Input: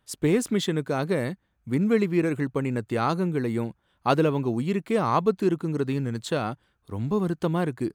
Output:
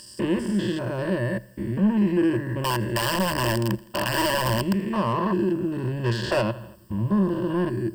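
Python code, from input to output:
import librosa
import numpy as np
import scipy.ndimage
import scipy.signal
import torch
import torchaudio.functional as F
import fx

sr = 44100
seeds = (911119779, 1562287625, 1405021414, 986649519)

y = fx.spec_steps(x, sr, hold_ms=200)
y = fx.dmg_noise_colour(y, sr, seeds[0], colour='violet', level_db=-58.0)
y = fx.high_shelf(y, sr, hz=7500.0, db=-12.0)
y = fx.overflow_wrap(y, sr, gain_db=22.5, at=(2.64, 4.83))
y = fx.spec_box(y, sr, start_s=6.04, length_s=0.37, low_hz=360.0, high_hz=7100.0, gain_db=12)
y = fx.echo_feedback(y, sr, ms=82, feedback_pct=57, wet_db=-24.0)
y = 10.0 ** (-24.0 / 20.0) * np.tanh(y / 10.0 ** (-24.0 / 20.0))
y = fx.ripple_eq(y, sr, per_octave=1.3, db=15)
y = F.gain(torch.from_numpy(y), 4.0).numpy()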